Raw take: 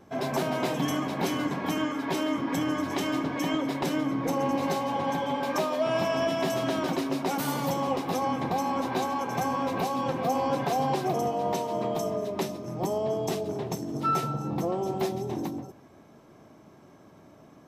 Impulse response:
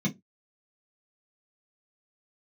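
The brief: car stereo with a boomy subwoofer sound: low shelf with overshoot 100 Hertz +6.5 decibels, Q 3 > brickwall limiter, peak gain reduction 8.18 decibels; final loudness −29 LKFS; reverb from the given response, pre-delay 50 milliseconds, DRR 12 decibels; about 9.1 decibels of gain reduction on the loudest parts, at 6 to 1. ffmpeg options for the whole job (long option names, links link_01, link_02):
-filter_complex "[0:a]acompressor=threshold=-33dB:ratio=6,asplit=2[link_01][link_02];[1:a]atrim=start_sample=2205,adelay=50[link_03];[link_02][link_03]afir=irnorm=-1:irlink=0,volume=-18dB[link_04];[link_01][link_04]amix=inputs=2:normalize=0,lowshelf=frequency=100:width_type=q:width=3:gain=6.5,volume=9.5dB,alimiter=limit=-20.5dB:level=0:latency=1"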